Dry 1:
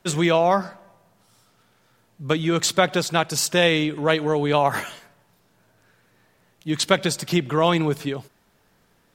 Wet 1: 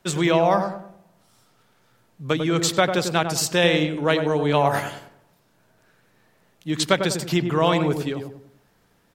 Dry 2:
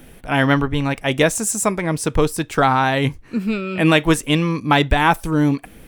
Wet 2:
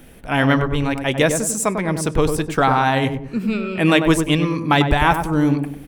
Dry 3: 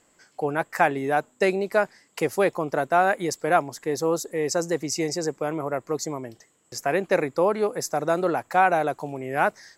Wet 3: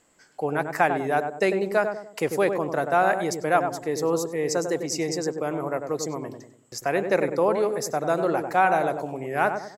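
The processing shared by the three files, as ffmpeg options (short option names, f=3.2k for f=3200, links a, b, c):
-filter_complex "[0:a]asplit=2[a][b];[b]adelay=97,lowpass=f=960:p=1,volume=-5dB,asplit=2[c][d];[d]adelay=97,lowpass=f=960:p=1,volume=0.44,asplit=2[e][f];[f]adelay=97,lowpass=f=960:p=1,volume=0.44,asplit=2[g][h];[h]adelay=97,lowpass=f=960:p=1,volume=0.44,asplit=2[i][j];[j]adelay=97,lowpass=f=960:p=1,volume=0.44[k];[a][c][e][g][i][k]amix=inputs=6:normalize=0,volume=-1dB"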